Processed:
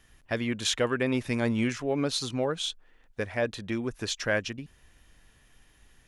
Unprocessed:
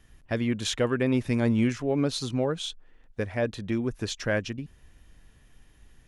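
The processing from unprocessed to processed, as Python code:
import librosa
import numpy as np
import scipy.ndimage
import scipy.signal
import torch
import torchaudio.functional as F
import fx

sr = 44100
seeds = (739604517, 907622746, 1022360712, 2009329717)

y = fx.low_shelf(x, sr, hz=450.0, db=-8.0)
y = y * 10.0 ** (2.5 / 20.0)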